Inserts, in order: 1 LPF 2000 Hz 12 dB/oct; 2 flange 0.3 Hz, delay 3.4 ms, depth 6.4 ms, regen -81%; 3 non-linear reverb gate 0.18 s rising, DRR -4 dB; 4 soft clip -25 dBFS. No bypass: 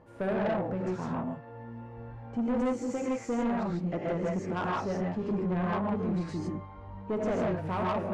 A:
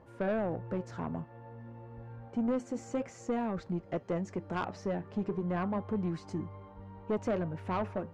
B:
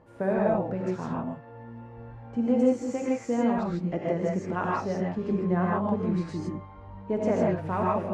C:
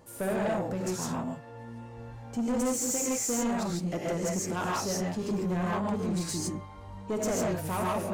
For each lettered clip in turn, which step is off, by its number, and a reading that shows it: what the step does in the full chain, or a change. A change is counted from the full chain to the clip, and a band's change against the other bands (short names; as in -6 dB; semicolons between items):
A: 3, momentary loudness spread change +2 LU; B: 4, distortion -10 dB; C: 1, 4 kHz band +9.5 dB